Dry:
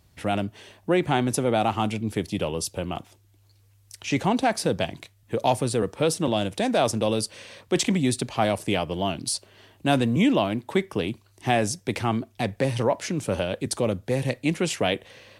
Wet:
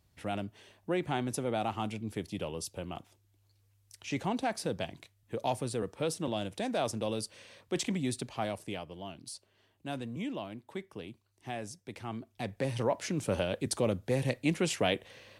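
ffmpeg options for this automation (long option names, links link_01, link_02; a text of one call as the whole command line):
ffmpeg -i in.wav -af "volume=2dB,afade=type=out:start_time=8.21:duration=0.73:silence=0.446684,afade=type=in:start_time=11.98:duration=1.26:silence=0.251189" out.wav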